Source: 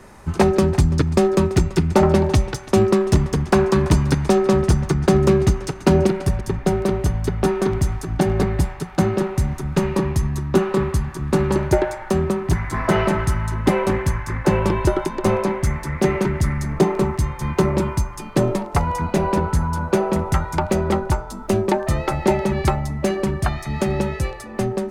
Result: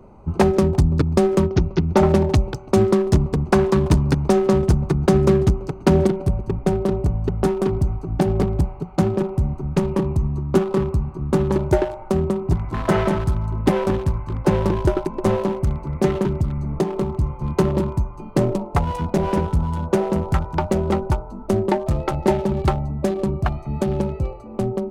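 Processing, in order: local Wiener filter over 25 samples; 1.47–1.97 s: elliptic low-pass 6.1 kHz, stop band 40 dB; 16.42–17.14 s: compression 2:1, threshold -20 dBFS, peak gain reduction 6 dB

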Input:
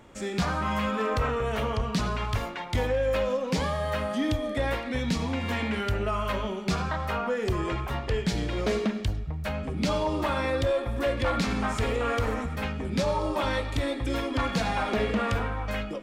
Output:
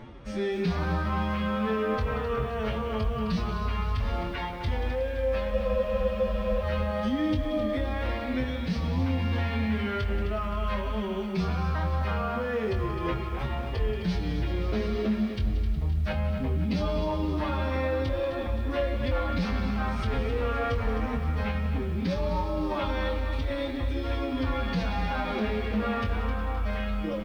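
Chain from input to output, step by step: bass shelf 200 Hz +9 dB; reverse; upward compressor, threshold -30 dBFS; reverse; peak limiter -22 dBFS, peak gain reduction 11 dB; Savitzky-Golay filter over 15 samples; time stretch by phase-locked vocoder 1.7×; doubling 23 ms -7 dB; on a send: feedback echo behind a high-pass 182 ms, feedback 76%, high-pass 1.9 kHz, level -13.5 dB; on the sum: spectral freeze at 5.53 s, 1.10 s; bit-crushed delay 260 ms, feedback 55%, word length 9-bit, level -10 dB

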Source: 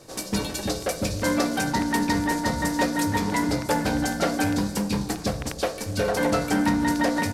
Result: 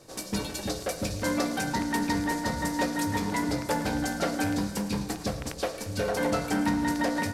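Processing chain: thinning echo 110 ms, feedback 73%, level -15.5 dB; trim -4.5 dB

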